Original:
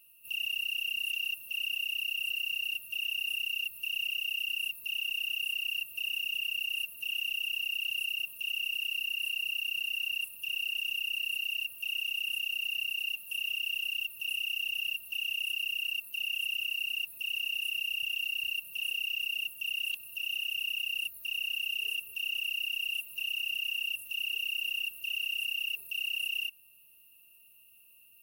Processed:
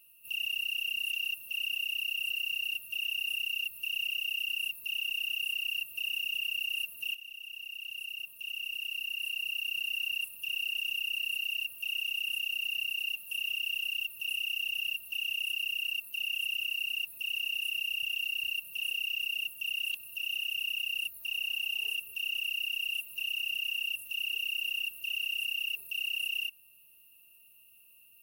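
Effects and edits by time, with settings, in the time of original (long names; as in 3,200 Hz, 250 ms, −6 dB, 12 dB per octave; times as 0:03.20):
0:07.15–0:09.93: fade in, from −14 dB
0:21.19–0:21.92: parametric band 870 Hz +6.5 dB → +14.5 dB 0.33 octaves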